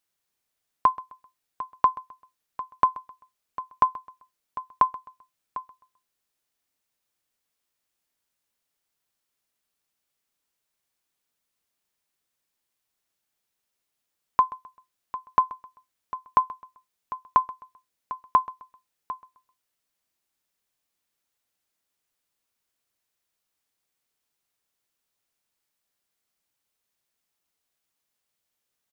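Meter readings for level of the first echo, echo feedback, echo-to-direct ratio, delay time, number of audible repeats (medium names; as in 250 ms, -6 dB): -19.5 dB, 34%, -19.0 dB, 130 ms, 2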